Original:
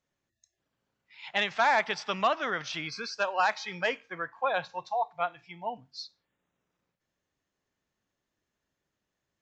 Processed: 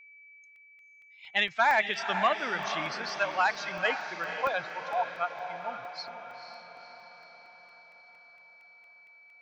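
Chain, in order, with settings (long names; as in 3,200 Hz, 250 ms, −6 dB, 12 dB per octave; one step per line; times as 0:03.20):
spectral dynamics exaggerated over time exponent 1.5
parametric band 2,000 Hz +4 dB 1.8 octaves
steady tone 2,300 Hz −51 dBFS
on a send: feedback delay with all-pass diffusion 494 ms, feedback 57%, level −8 dB
on the sum: regular buffer underruns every 0.23 s, samples 64, zero, from 0:00.56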